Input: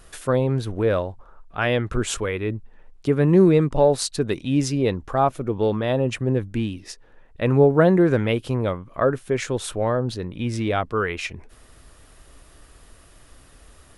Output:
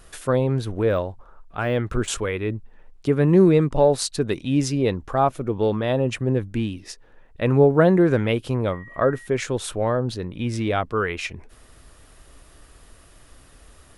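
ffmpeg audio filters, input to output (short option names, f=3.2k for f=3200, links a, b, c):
-filter_complex "[0:a]asettb=1/sr,asplit=3[a][b][c];[a]atrim=end=0.754[d];[b]atrim=start=0.75:end=2.08,asetpts=PTS-STARTPTS,afade=t=in:d=0.004:c=qsin,afade=t=out:st=1.326:d=0.004:c=qsin,deesser=0.95[e];[c]atrim=start=2.076[f];[d][e]acrossfade=d=0.004:c1=hsin:c2=qsin[g];[g][f]acrossfade=d=0.004:c1=qsin:c2=hsin,asettb=1/sr,asplit=3[h][i][j];[h]atrim=end=8.724[k];[i]atrim=start=8.72:end=9.27,asetpts=PTS-STARTPTS,afade=t=in:d=0.004:c=qsin,afade=t=out:st=0.546:d=0.004:c=qsin,aeval=exprs='val(0)+0.00794*sin(2*PI*1900*n/s)':c=same[l];[j]atrim=start=9.266[m];[k][l]acrossfade=d=0.004:c1=hsin:c2=qsin[n];[n][m]acrossfade=d=0.004:c1=qsin:c2=hsin"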